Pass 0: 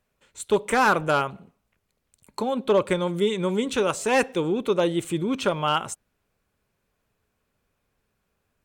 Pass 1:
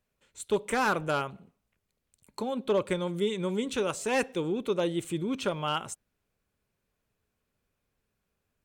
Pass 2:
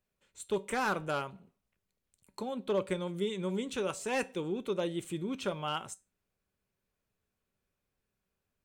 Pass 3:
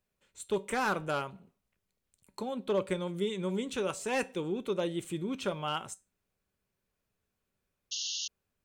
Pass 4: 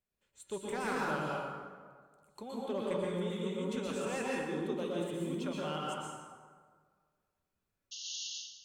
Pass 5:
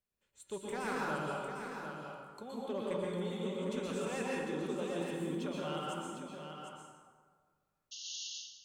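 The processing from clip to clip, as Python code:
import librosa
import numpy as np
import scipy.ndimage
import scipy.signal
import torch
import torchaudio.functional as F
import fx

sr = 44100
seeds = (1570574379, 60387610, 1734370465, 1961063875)

y1 = fx.peak_eq(x, sr, hz=1000.0, db=-3.0, octaves=1.8)
y1 = y1 * 10.0 ** (-5.0 / 20.0)
y2 = fx.comb_fb(y1, sr, f0_hz=190.0, decay_s=0.24, harmonics='all', damping=0.0, mix_pct=50)
y3 = fx.spec_paint(y2, sr, seeds[0], shape='noise', start_s=7.91, length_s=0.37, low_hz=2700.0, high_hz=6800.0, level_db=-37.0)
y3 = y3 * 10.0 ** (1.0 / 20.0)
y4 = fx.rev_plate(y3, sr, seeds[1], rt60_s=1.7, hf_ratio=0.55, predelay_ms=105, drr_db=-4.5)
y4 = y4 * 10.0 ** (-9.0 / 20.0)
y5 = y4 + 10.0 ** (-7.5 / 20.0) * np.pad(y4, (int(752 * sr / 1000.0), 0))[:len(y4)]
y5 = y5 * 10.0 ** (-2.0 / 20.0)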